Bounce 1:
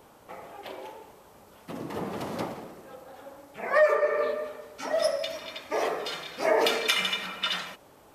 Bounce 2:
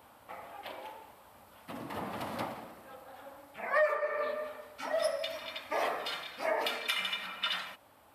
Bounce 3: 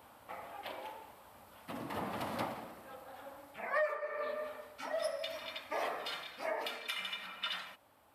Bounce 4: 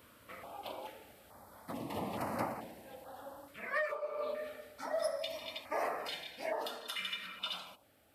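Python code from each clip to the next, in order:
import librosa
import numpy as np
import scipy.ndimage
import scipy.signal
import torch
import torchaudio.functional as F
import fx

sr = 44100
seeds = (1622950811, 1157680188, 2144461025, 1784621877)

y1 = fx.graphic_eq_15(x, sr, hz=(160, 400, 6300), db=(-9, -12, -9))
y1 = fx.rider(y1, sr, range_db=3, speed_s=0.5)
y1 = scipy.signal.sosfilt(scipy.signal.butter(2, 67.0, 'highpass', fs=sr, output='sos'), y1)
y1 = y1 * 10.0 ** (-3.5 / 20.0)
y2 = fx.rider(y1, sr, range_db=4, speed_s=0.5)
y2 = y2 * 10.0 ** (-4.5 / 20.0)
y3 = fx.filter_held_notch(y2, sr, hz=2.3, low_hz=810.0, high_hz=3400.0)
y3 = y3 * 10.0 ** (2.0 / 20.0)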